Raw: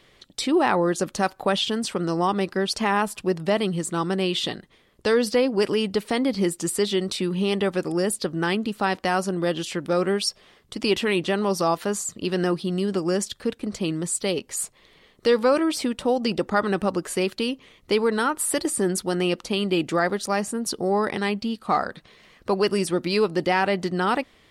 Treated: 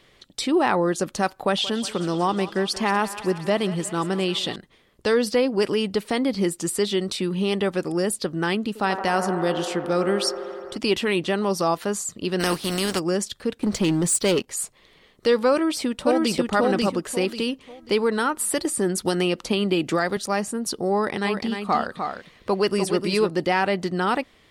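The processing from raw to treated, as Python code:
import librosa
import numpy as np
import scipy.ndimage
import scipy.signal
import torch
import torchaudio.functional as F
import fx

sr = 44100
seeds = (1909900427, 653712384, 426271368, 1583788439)

y = fx.echo_thinned(x, sr, ms=179, feedback_pct=73, hz=420.0, wet_db=-14.5, at=(1.36, 4.56))
y = fx.echo_wet_bandpass(y, sr, ms=83, feedback_pct=83, hz=740.0, wet_db=-7.5, at=(8.67, 10.78))
y = fx.spec_flatten(y, sr, power=0.52, at=(12.39, 12.98), fade=0.02)
y = fx.leveller(y, sr, passes=2, at=(13.62, 14.48))
y = fx.echo_throw(y, sr, start_s=15.52, length_s=0.82, ms=540, feedback_pct=30, wet_db=-1.0)
y = fx.band_squash(y, sr, depth_pct=100, at=(19.05, 20.17))
y = fx.echo_single(y, sr, ms=302, db=-6.5, at=(21.24, 23.3), fade=0.02)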